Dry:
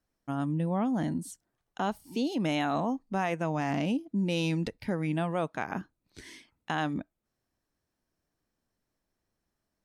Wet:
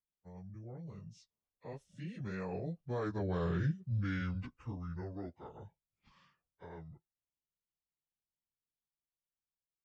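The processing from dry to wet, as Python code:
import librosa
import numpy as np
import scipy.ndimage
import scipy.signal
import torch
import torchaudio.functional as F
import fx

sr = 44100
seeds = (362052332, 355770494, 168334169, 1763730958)

y = fx.pitch_bins(x, sr, semitones=-9.0)
y = fx.doppler_pass(y, sr, speed_mps=27, closest_m=15.0, pass_at_s=3.55)
y = y * 10.0 ** (-3.0 / 20.0)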